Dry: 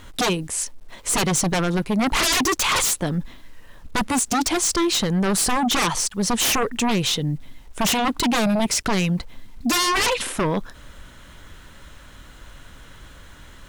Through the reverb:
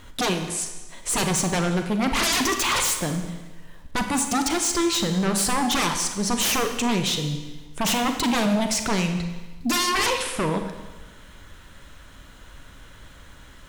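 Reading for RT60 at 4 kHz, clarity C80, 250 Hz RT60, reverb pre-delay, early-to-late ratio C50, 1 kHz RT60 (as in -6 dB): 1.1 s, 8.5 dB, 1.2 s, 36 ms, 7.0 dB, 1.2 s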